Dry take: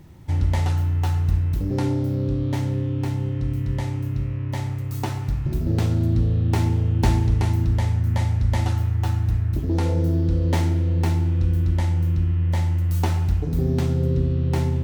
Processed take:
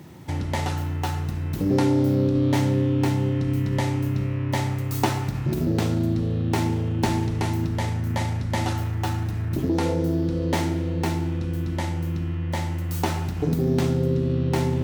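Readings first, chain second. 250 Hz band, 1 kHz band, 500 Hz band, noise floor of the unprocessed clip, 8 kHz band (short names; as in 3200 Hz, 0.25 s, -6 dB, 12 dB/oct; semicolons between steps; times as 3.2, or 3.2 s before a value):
+3.0 dB, +3.5 dB, +4.0 dB, -27 dBFS, n/a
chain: in parallel at -1.5 dB: negative-ratio compressor -23 dBFS, ratio -0.5; on the sum: HPF 160 Hz 12 dB/oct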